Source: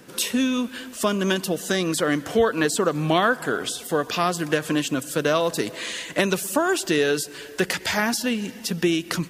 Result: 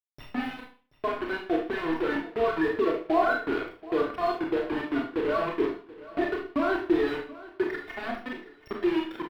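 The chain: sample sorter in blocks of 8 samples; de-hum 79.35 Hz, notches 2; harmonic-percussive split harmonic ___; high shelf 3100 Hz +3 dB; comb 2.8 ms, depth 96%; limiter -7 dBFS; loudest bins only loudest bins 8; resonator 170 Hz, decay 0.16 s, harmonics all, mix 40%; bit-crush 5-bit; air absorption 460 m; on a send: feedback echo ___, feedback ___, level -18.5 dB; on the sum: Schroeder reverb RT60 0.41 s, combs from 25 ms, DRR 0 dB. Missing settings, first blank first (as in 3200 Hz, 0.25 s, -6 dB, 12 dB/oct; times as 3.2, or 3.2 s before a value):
-9 dB, 0.73 s, 40%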